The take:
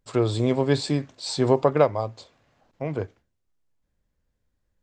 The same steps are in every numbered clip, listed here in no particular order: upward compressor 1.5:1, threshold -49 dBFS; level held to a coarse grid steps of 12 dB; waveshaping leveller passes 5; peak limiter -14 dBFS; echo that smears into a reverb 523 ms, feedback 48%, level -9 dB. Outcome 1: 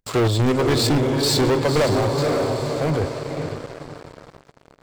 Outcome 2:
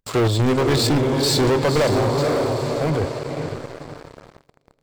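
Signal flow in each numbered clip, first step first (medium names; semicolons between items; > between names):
peak limiter > level held to a coarse grid > echo that smears into a reverb > upward compressor > waveshaping leveller; level held to a coarse grid > upward compressor > echo that smears into a reverb > waveshaping leveller > peak limiter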